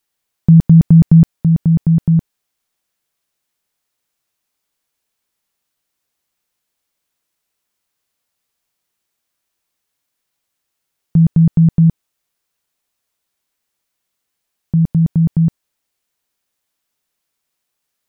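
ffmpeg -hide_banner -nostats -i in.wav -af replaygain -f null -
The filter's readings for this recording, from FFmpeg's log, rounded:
track_gain = -2.9 dB
track_peak = 0.586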